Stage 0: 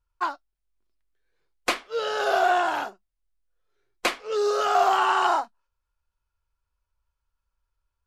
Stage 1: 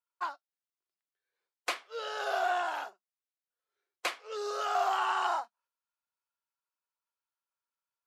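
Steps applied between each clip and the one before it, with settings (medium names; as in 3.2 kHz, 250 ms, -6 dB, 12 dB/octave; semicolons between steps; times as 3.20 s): high-pass 520 Hz 12 dB/octave; trim -8 dB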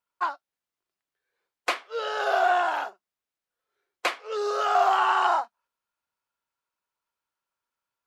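treble shelf 3.9 kHz -8 dB; trim +8.5 dB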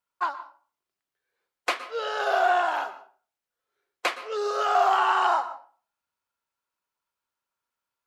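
reverberation RT60 0.40 s, pre-delay 111 ms, DRR 13.5 dB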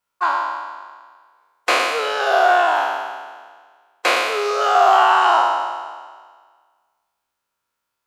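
spectral sustain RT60 1.63 s; trim +5 dB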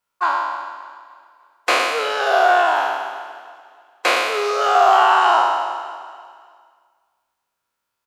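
feedback delay 294 ms, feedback 44%, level -18 dB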